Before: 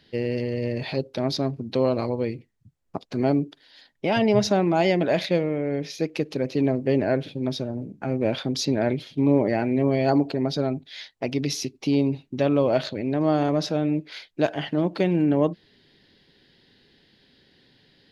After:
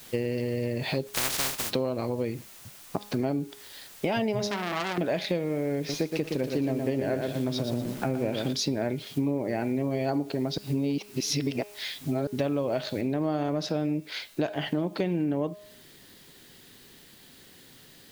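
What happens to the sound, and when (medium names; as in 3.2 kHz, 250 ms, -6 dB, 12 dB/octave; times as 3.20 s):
1.06–1.70 s: spectral contrast reduction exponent 0.11
4.45–4.98 s: transformer saturation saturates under 3.6 kHz
5.77–8.53 s: bit-crushed delay 118 ms, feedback 35%, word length 7-bit, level -5 dB
10.58–12.27 s: reverse
13.01 s: noise floor step -53 dB -60 dB
whole clip: de-hum 206.4 Hz, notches 27; compression 6:1, threshold -29 dBFS; trim +4 dB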